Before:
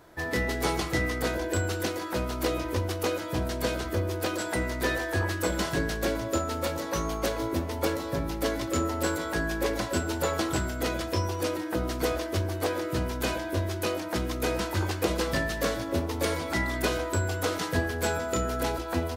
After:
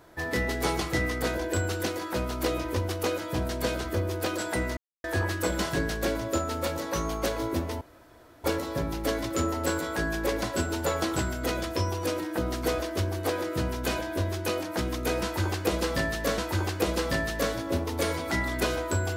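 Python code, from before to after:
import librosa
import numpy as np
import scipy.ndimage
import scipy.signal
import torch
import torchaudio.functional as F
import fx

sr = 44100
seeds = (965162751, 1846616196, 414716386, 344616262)

y = fx.edit(x, sr, fx.silence(start_s=4.77, length_s=0.27),
    fx.insert_room_tone(at_s=7.81, length_s=0.63),
    fx.repeat(start_s=14.6, length_s=1.15, count=2), tone=tone)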